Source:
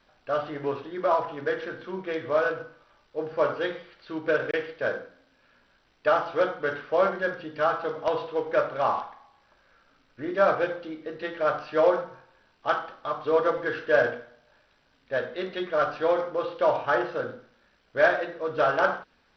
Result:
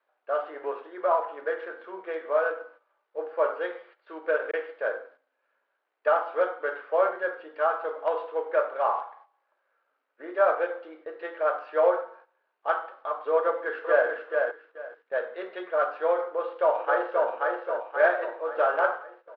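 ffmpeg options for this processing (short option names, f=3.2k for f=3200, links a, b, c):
-filter_complex "[0:a]asplit=2[a][b];[b]afade=t=in:st=13.41:d=0.01,afade=t=out:st=14.08:d=0.01,aecho=0:1:430|860|1290:0.630957|0.126191|0.0252383[c];[a][c]amix=inputs=2:normalize=0,asplit=2[d][e];[e]afade=t=in:st=16.26:d=0.01,afade=t=out:st=17.27:d=0.01,aecho=0:1:530|1060|1590|2120|2650|3180|3710:0.749894|0.374947|0.187474|0.0937368|0.0468684|0.0234342|0.0117171[f];[d][f]amix=inputs=2:normalize=0,highpass=f=430:w=0.5412,highpass=f=430:w=1.3066,agate=range=-10dB:threshold=-51dB:ratio=16:detection=peak,lowpass=1.8k"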